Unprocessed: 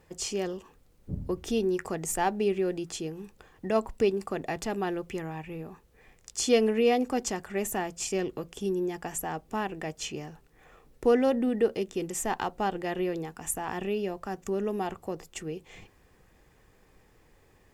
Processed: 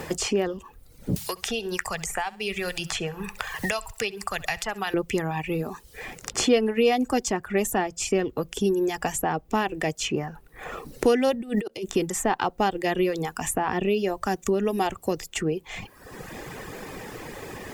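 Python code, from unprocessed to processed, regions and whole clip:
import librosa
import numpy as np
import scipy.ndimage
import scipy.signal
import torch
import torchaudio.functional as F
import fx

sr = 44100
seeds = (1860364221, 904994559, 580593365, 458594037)

y = fx.chain(x, sr, fx.tone_stack(knobs='10-0-10'),
    fx.room_flutter(wall_m=11.2, rt60_s=0.36),
    fx.band_squash(depth_pct=100), at=(1.16, 4.94))
y = fx.chain(y, sr, fx.over_compress(threshold_db=-33.0, ratio=-1.0),
    fx.auto_swell(attack_ms=441.0), at=(11.34, 11.9))
y = fx.dereverb_blind(y, sr, rt60_s=0.72)
y = fx.band_squash(y, sr, depth_pct=70)
y = y * 10.0 ** (8.0 / 20.0)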